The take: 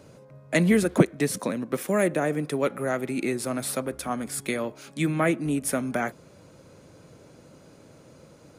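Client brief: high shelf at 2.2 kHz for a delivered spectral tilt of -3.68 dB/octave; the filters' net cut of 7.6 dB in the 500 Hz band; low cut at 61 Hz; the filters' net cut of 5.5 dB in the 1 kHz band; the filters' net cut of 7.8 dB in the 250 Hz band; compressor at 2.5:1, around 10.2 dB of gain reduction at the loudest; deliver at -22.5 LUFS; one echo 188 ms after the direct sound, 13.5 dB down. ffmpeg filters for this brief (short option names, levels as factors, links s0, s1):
-af "highpass=61,equalizer=f=250:t=o:g=-9,equalizer=f=500:t=o:g=-5.5,equalizer=f=1000:t=o:g=-7,highshelf=f=2200:g=6,acompressor=threshold=0.0224:ratio=2.5,aecho=1:1:188:0.211,volume=3.98"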